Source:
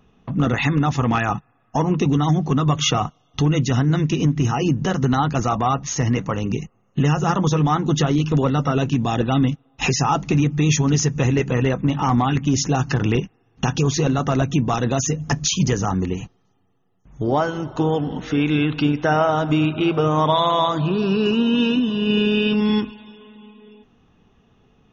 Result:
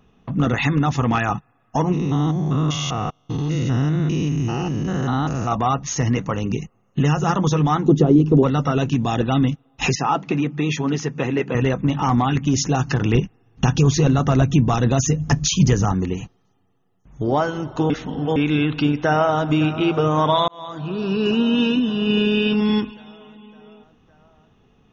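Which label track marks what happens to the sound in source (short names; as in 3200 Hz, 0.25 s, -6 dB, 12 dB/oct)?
1.920000	5.520000	stepped spectrum every 0.2 s
7.880000	8.430000	EQ curve 110 Hz 0 dB, 390 Hz +9 dB, 1600 Hz -13 dB
9.950000	11.550000	BPF 210–3400 Hz
13.130000	15.920000	low shelf 150 Hz +8.5 dB
17.900000	18.360000	reverse
18.990000	19.490000	echo throw 0.56 s, feedback 70%, level -15 dB
20.480000	21.320000	fade in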